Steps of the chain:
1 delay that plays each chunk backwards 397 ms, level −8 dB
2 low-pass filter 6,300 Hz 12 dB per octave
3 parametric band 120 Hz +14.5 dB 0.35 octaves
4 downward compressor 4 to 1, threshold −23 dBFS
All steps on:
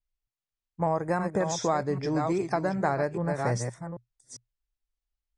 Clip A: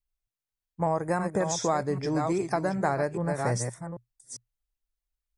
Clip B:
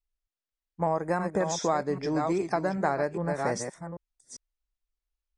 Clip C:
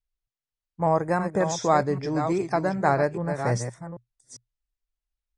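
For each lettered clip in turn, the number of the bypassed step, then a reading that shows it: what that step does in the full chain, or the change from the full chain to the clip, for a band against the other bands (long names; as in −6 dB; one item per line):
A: 2, 8 kHz band +3.5 dB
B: 3, 125 Hz band −4.0 dB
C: 4, average gain reduction 2.0 dB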